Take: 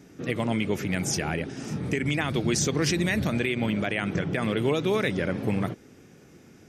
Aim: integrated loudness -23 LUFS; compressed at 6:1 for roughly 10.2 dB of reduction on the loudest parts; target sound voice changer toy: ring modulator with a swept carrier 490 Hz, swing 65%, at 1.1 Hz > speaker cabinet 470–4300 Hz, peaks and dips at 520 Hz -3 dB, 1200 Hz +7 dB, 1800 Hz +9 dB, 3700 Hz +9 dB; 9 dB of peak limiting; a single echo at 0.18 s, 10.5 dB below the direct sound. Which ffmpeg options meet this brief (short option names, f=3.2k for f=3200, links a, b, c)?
-af "acompressor=threshold=-32dB:ratio=6,alimiter=level_in=6.5dB:limit=-24dB:level=0:latency=1,volume=-6.5dB,aecho=1:1:180:0.299,aeval=exprs='val(0)*sin(2*PI*490*n/s+490*0.65/1.1*sin(2*PI*1.1*n/s))':c=same,highpass=470,equalizer=f=520:t=q:w=4:g=-3,equalizer=f=1.2k:t=q:w=4:g=7,equalizer=f=1.8k:t=q:w=4:g=9,equalizer=f=3.7k:t=q:w=4:g=9,lowpass=f=4.3k:w=0.5412,lowpass=f=4.3k:w=1.3066,volume=18.5dB"